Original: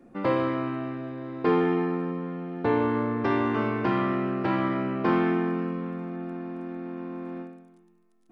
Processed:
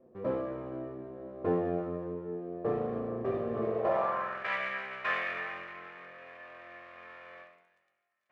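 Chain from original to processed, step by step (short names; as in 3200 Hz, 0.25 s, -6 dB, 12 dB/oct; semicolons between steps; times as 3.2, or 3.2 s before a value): minimum comb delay 1.7 ms; flange 0.32 Hz, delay 7.7 ms, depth 2.7 ms, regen +54%; band-pass sweep 320 Hz -> 2100 Hz, 3.6–4.49; gain +8.5 dB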